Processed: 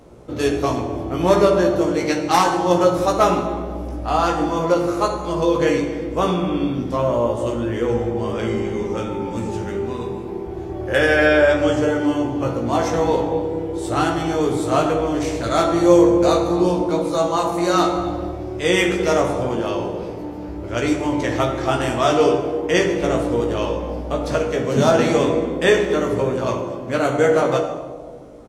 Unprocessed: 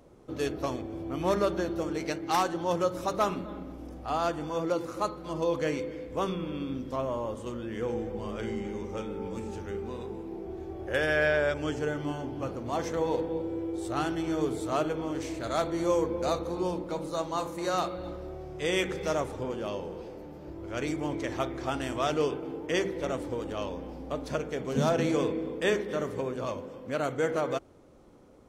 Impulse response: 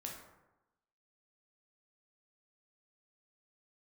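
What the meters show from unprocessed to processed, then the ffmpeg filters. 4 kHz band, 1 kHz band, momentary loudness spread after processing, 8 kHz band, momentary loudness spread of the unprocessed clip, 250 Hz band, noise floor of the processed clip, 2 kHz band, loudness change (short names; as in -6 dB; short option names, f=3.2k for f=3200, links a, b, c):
+11.0 dB, +12.0 dB, 10 LU, +11.0 dB, 10 LU, +12.5 dB, -30 dBFS, +11.0 dB, +12.0 dB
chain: -filter_complex "[0:a]asplit=2[a][b];[b]adelay=17,volume=-4dB[c];[a][c]amix=inputs=2:normalize=0,asplit=2[d][e];[1:a]atrim=start_sample=2205,asetrate=23373,aresample=44100[f];[e][f]afir=irnorm=-1:irlink=0,volume=1dB[g];[d][g]amix=inputs=2:normalize=0,volume=3.5dB"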